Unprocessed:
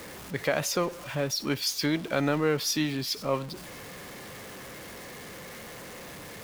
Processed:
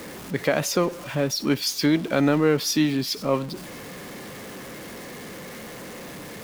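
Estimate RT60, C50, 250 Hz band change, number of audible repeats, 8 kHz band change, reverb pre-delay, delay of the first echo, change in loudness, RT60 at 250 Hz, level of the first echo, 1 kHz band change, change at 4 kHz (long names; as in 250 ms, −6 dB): no reverb audible, no reverb audible, +8.0 dB, no echo audible, +3.0 dB, no reverb audible, no echo audible, +5.5 dB, no reverb audible, no echo audible, +3.5 dB, +3.0 dB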